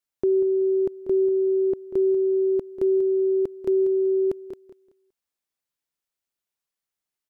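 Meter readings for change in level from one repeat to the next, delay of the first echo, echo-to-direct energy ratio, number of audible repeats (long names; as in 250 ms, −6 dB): −11.5 dB, 190 ms, −11.5 dB, 2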